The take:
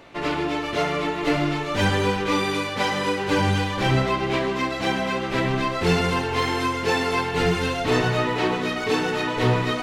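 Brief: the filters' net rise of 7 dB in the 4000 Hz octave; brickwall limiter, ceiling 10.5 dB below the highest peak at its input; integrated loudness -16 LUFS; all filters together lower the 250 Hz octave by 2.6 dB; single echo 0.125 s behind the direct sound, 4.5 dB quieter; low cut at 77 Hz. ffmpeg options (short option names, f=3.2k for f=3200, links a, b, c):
-af "highpass=77,equalizer=f=250:t=o:g=-3.5,equalizer=f=4k:t=o:g=9,alimiter=limit=-18dB:level=0:latency=1,aecho=1:1:125:0.596,volume=8.5dB"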